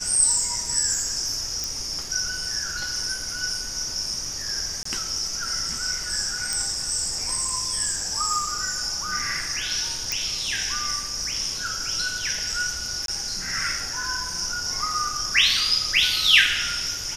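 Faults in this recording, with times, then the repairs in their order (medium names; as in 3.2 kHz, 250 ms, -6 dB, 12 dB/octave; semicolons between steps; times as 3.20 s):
1.64 s: pop
4.83–4.85 s: dropout 24 ms
6.53 s: pop
10.12 s: pop
13.06–13.08 s: dropout 22 ms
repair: de-click; interpolate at 4.83 s, 24 ms; interpolate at 13.06 s, 22 ms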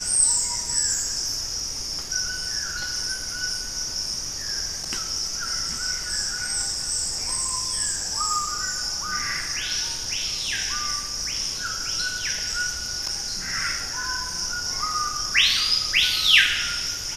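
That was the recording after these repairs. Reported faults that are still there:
nothing left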